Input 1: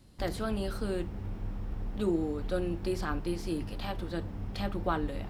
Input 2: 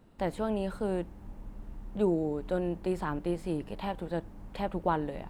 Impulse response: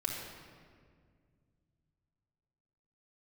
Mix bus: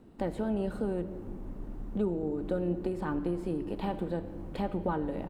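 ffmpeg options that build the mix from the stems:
-filter_complex "[0:a]lowpass=frequency=1500:width=0.5412,lowpass=frequency=1500:width=1.3066,volume=-7.5dB[link_01];[1:a]equalizer=frequency=280:width_type=o:width=1.6:gain=10,acompressor=threshold=-28dB:ratio=4,adelay=0.5,volume=-3.5dB,asplit=2[link_02][link_03];[link_03]volume=-9.5dB[link_04];[2:a]atrim=start_sample=2205[link_05];[link_04][link_05]afir=irnorm=-1:irlink=0[link_06];[link_01][link_02][link_06]amix=inputs=3:normalize=0"

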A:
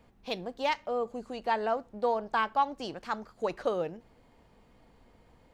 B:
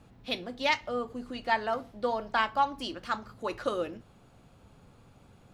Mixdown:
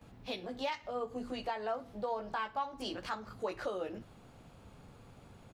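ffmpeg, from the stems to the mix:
ffmpeg -i stem1.wav -i stem2.wav -filter_complex "[0:a]highpass=250,volume=-5dB,asplit=2[link_01][link_02];[1:a]adelay=13,volume=1dB[link_03];[link_02]apad=whole_len=244569[link_04];[link_03][link_04]sidechaincompress=threshold=-45dB:ratio=4:attack=16:release=162[link_05];[link_01][link_05]amix=inputs=2:normalize=0,alimiter=level_in=1.5dB:limit=-24dB:level=0:latency=1:release=277,volume=-1.5dB" out.wav

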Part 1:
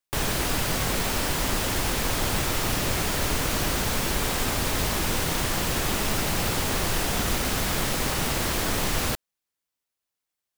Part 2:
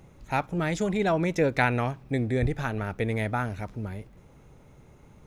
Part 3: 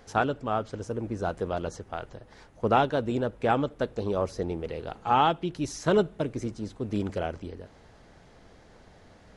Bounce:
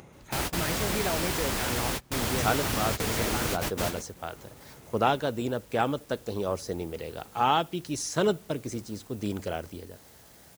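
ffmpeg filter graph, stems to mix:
ffmpeg -i stem1.wav -i stem2.wav -i stem3.wav -filter_complex "[0:a]volume=-3.5dB[link_01];[1:a]lowshelf=frequency=160:gain=-10,acompressor=mode=upward:threshold=-37dB:ratio=2.5,alimiter=limit=-19dB:level=0:latency=1:release=44,volume=-4.5dB,asplit=2[link_02][link_03];[2:a]highpass=51,acrusher=bits=9:mix=0:aa=0.000001,crystalizer=i=2.5:c=0,adelay=2300,volume=-2.5dB[link_04];[link_03]apad=whole_len=466225[link_05];[link_01][link_05]sidechaingate=range=-33dB:threshold=-42dB:ratio=16:detection=peak[link_06];[link_06][link_02][link_04]amix=inputs=3:normalize=0,highpass=40" out.wav

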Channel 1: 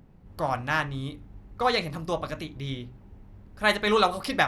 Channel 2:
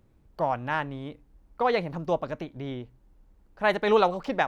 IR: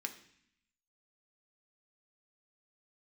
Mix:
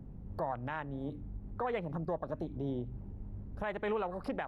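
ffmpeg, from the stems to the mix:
-filter_complex "[0:a]tiltshelf=frequency=1200:gain=9.5,acompressor=threshold=-26dB:ratio=6,alimiter=level_in=8.5dB:limit=-24dB:level=0:latency=1:release=185,volume=-8.5dB,volume=-4.5dB[link_01];[1:a]afwtdn=0.0178,aeval=exprs='val(0)+0.00398*(sin(2*PI*50*n/s)+sin(2*PI*2*50*n/s)/2+sin(2*PI*3*50*n/s)/3+sin(2*PI*4*50*n/s)/4+sin(2*PI*5*50*n/s)/5)':channel_layout=same,volume=-1dB,asplit=2[link_02][link_03];[link_03]volume=-23.5dB[link_04];[2:a]atrim=start_sample=2205[link_05];[link_04][link_05]afir=irnorm=-1:irlink=0[link_06];[link_01][link_02][link_06]amix=inputs=3:normalize=0,acrossover=split=130[link_07][link_08];[link_08]acompressor=threshold=-35dB:ratio=1.5[link_09];[link_07][link_09]amix=inputs=2:normalize=0,alimiter=level_in=1dB:limit=-24dB:level=0:latency=1:release=214,volume=-1dB"

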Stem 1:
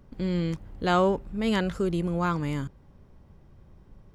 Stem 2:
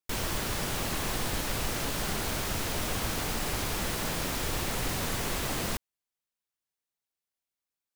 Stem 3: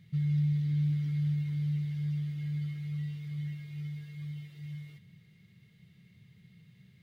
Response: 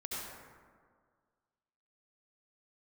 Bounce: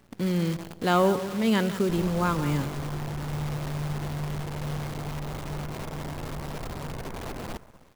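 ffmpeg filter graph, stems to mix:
-filter_complex "[0:a]highpass=frequency=99:width=0.5412,highpass=frequency=99:width=1.3066,equalizer=frequency=230:width_type=o:width=0.35:gain=2,acontrast=51,volume=-5.5dB,asplit=4[link_01][link_02][link_03][link_04];[link_02]volume=-18dB[link_05];[link_03]volume=-13dB[link_06];[1:a]lowpass=frequency=1100:width=0.5412,lowpass=frequency=1100:width=1.3066,aeval=exprs='0.0944*sin(PI/2*2.82*val(0)/0.0944)':channel_layout=same,adelay=1800,volume=-14.5dB,asplit=2[link_07][link_08];[link_08]volume=-8.5dB[link_09];[2:a]adelay=2150,volume=-2dB,asplit=3[link_10][link_11][link_12];[link_11]volume=-11dB[link_13];[link_12]volume=-22.5dB[link_14];[link_04]apad=whole_len=404807[link_15];[link_10][link_15]sidechaincompress=threshold=-40dB:ratio=3:attack=5.4:release=964[link_16];[3:a]atrim=start_sample=2205[link_17];[link_05][link_09][link_13]amix=inputs=3:normalize=0[link_18];[link_18][link_17]afir=irnorm=-1:irlink=0[link_19];[link_06][link_14]amix=inputs=2:normalize=0,aecho=0:1:175|350|525|700|875:1|0.36|0.13|0.0467|0.0168[link_20];[link_01][link_07][link_16][link_19][link_20]amix=inputs=5:normalize=0,acrusher=bits=7:dc=4:mix=0:aa=0.000001"

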